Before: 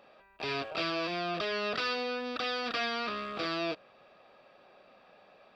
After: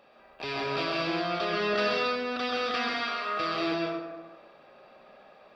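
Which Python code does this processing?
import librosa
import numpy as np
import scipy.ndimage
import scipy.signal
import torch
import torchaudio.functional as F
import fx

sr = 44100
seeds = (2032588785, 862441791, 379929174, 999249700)

y = fx.highpass(x, sr, hz=fx.line((2.77, 1200.0), (3.38, 400.0)), slope=12, at=(2.77, 3.38), fade=0.02)
y = fx.rev_plate(y, sr, seeds[0], rt60_s=1.3, hf_ratio=0.45, predelay_ms=115, drr_db=-2.5)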